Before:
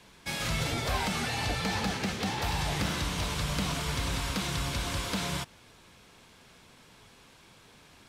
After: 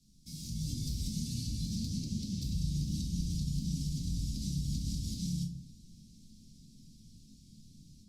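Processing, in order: elliptic band-stop 220–5000 Hz, stop band 70 dB; high shelf 6300 Hz -5.5 dB, from 1.98 s -11 dB; compressor 1.5:1, threshold -38 dBFS, peak gain reduction 4 dB; limiter -33 dBFS, peak gain reduction 8 dB; AGC gain up to 8.5 dB; shoebox room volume 350 m³, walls furnished, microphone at 2.2 m; gain -7 dB; Opus 64 kbps 48000 Hz

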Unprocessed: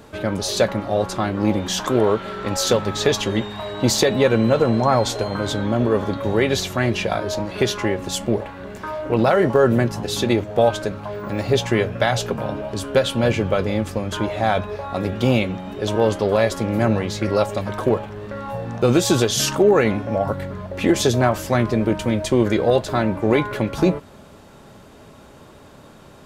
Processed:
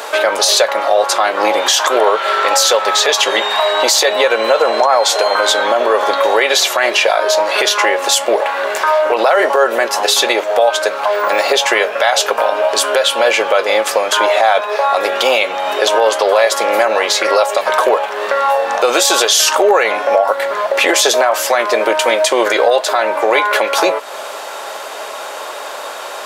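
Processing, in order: HPF 560 Hz 24 dB/oct; compressor 2:1, threshold -38 dBFS, peak gain reduction 13 dB; maximiser +24.5 dB; gain -1 dB

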